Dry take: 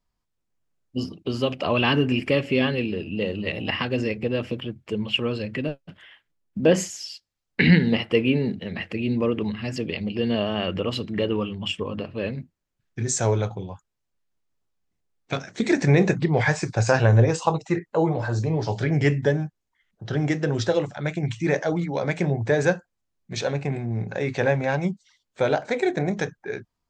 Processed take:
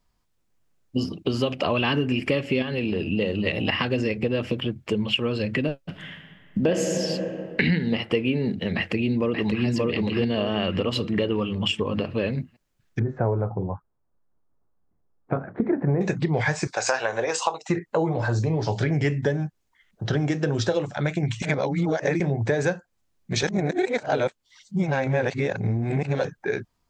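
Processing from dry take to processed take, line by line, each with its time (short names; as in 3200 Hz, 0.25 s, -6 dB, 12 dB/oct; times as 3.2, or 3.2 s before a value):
2.62–3.06 compressor, threshold -25 dBFS
5.79–6.91 reverb throw, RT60 2 s, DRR 4.5 dB
8.75–9.66 echo throw 0.58 s, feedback 35%, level -1 dB
12.99–16.01 LPF 1300 Hz 24 dB/oct
16.67–17.69 HPF 630 Hz
20.19–20.9 notch 2000 Hz
21.42–22.2 reverse
23.43–26.25 reverse
whole clip: compressor 4:1, threshold -29 dBFS; gain +7.5 dB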